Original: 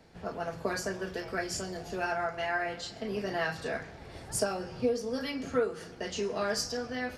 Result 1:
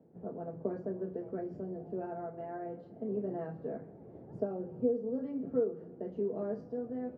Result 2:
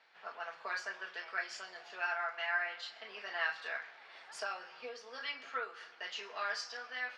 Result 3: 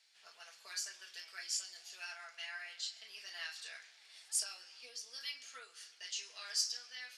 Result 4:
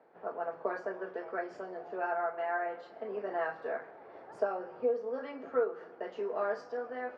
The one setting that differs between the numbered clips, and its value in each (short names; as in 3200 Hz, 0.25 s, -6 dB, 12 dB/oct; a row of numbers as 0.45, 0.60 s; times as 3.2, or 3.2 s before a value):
Butterworth band-pass, frequency: 270, 2000, 6000, 740 Hz